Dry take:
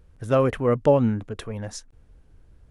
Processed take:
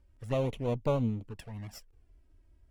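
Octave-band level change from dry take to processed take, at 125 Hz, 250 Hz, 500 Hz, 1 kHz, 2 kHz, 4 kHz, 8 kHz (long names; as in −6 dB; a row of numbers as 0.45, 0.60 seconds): −7.0, −10.0, −12.0, −12.0, −12.5, −7.0, −13.0 decibels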